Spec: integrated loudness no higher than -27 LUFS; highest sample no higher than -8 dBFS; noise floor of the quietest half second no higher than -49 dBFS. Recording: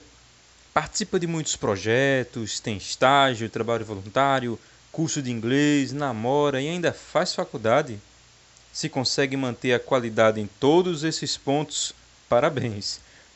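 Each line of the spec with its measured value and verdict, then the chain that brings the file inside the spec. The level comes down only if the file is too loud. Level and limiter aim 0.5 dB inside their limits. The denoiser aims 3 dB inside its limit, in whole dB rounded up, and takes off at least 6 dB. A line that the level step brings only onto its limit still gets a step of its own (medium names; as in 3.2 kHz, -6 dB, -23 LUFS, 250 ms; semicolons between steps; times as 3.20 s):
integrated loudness -24.0 LUFS: fail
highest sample -5.0 dBFS: fail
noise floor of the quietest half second -54 dBFS: pass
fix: trim -3.5 dB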